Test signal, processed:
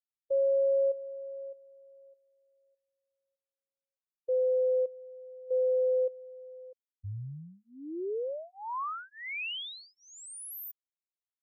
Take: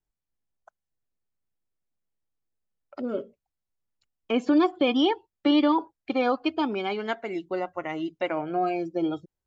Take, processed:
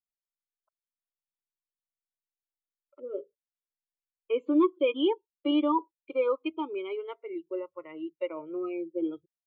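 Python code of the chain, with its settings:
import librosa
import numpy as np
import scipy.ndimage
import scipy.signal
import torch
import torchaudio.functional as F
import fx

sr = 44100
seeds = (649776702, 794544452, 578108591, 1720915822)

y = fx.fixed_phaser(x, sr, hz=1100.0, stages=8)
y = fx.spectral_expand(y, sr, expansion=1.5)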